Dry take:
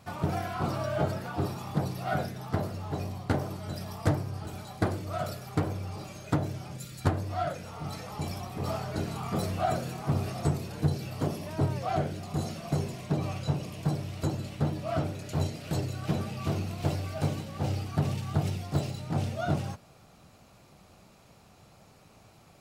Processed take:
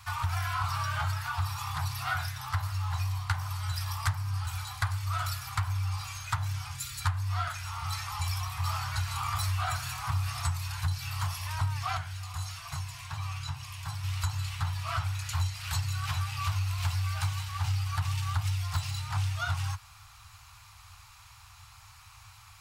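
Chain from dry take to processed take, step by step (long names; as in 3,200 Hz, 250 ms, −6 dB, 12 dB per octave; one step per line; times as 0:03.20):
elliptic band-stop filter 100–990 Hz, stop band 40 dB
downward compressor 3 to 1, threshold −36 dBFS, peak gain reduction 9.5 dB
0:11.97–0:14.04: flanger 1.3 Hz, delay 7.2 ms, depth 2.6 ms, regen +69%
level +8.5 dB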